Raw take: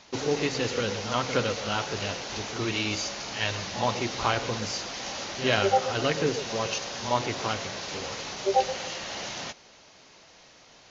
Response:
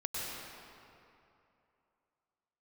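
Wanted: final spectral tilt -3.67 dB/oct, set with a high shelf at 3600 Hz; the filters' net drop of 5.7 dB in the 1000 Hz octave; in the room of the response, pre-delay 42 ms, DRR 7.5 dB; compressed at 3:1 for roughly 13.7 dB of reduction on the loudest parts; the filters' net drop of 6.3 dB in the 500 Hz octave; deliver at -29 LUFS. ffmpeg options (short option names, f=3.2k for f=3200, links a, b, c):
-filter_complex "[0:a]equalizer=f=500:t=o:g=-6.5,equalizer=f=1k:t=o:g=-4.5,highshelf=f=3.6k:g=-7.5,acompressor=threshold=-43dB:ratio=3,asplit=2[a][b];[1:a]atrim=start_sample=2205,adelay=42[c];[b][c]afir=irnorm=-1:irlink=0,volume=-11.5dB[d];[a][d]amix=inputs=2:normalize=0,volume=13dB"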